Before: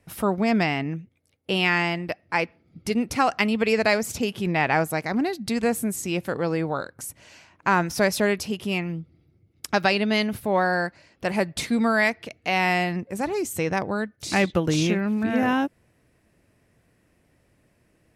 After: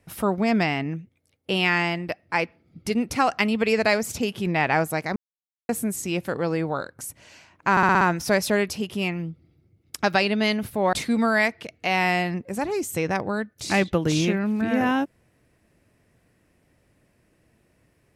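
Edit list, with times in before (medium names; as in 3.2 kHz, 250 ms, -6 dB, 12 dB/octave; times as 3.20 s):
5.16–5.69 s: mute
7.71 s: stutter 0.06 s, 6 plays
10.63–11.55 s: delete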